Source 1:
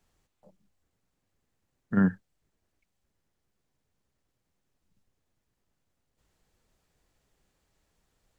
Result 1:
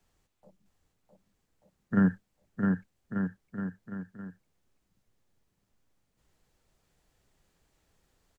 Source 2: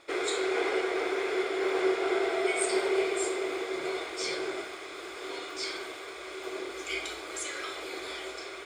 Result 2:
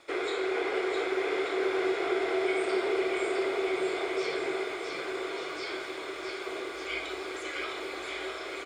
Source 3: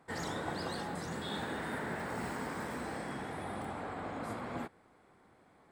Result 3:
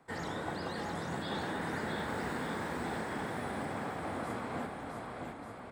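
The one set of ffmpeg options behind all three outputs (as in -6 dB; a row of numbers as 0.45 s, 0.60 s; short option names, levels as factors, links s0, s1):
-filter_complex "[0:a]acrossover=split=3900[s0][s1];[s1]acompressor=threshold=0.002:ratio=4:attack=1:release=60[s2];[s0][s2]amix=inputs=2:normalize=0,aecho=1:1:660|1188|1610|1948|2219:0.631|0.398|0.251|0.158|0.1,acrossover=split=310|3000[s3][s4][s5];[s4]acompressor=threshold=0.0398:ratio=6[s6];[s3][s6][s5]amix=inputs=3:normalize=0"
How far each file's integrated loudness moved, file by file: -4.5 LU, 0.0 LU, +1.5 LU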